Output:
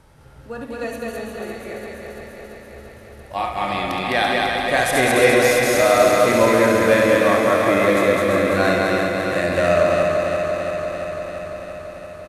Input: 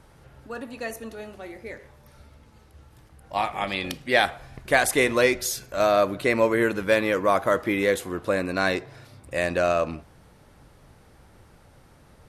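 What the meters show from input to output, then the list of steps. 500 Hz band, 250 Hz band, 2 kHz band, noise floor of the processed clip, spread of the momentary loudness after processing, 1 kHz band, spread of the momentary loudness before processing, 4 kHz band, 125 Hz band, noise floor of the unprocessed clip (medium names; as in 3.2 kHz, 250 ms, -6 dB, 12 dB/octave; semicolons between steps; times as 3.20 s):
+7.5 dB, +7.0 dB, +6.0 dB, -42 dBFS, 18 LU, +7.0 dB, 18 LU, +6.0 dB, +8.0 dB, -54 dBFS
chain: backward echo that repeats 170 ms, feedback 85%, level -5 dB; harmonic-percussive split percussive -9 dB; loudspeakers at several distances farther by 24 m -8 dB, 71 m -2 dB; trim +4 dB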